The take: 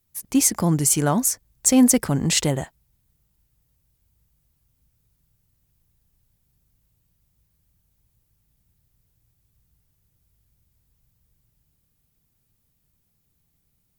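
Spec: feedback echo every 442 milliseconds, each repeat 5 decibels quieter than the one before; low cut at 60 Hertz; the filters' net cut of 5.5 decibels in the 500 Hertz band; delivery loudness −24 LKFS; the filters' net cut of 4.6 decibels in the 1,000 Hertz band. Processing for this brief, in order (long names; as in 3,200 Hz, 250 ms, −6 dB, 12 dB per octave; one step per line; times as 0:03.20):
high-pass filter 60 Hz
parametric band 500 Hz −5.5 dB
parametric band 1,000 Hz −4 dB
repeating echo 442 ms, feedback 56%, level −5 dB
level −4.5 dB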